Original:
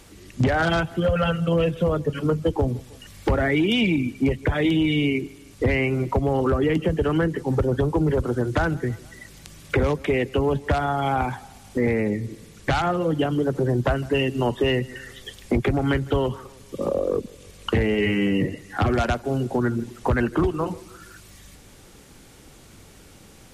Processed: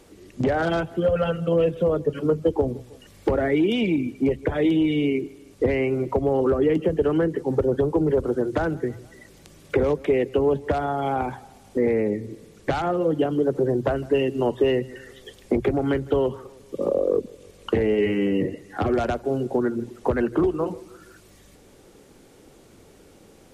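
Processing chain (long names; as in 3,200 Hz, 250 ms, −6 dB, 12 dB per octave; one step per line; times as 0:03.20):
parametric band 430 Hz +10 dB 1.8 octaves
mains-hum notches 60/120 Hz
level −7 dB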